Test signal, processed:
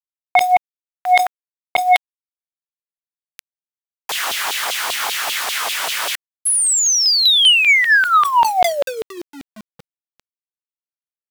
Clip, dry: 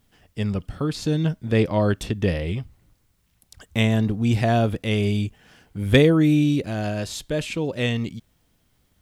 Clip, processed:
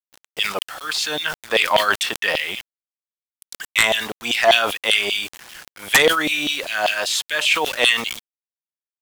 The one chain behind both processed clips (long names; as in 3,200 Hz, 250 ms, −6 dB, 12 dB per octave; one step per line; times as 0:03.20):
auto-filter high-pass saw down 5.1 Hz 660–3,500 Hz
bit-depth reduction 8 bits, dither none
dynamic equaliser 3,200 Hz, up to +3 dB, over −42 dBFS, Q 4
sine wavefolder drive 12 dB, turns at −1 dBFS
level that may fall only so fast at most 100 dB per second
level −6 dB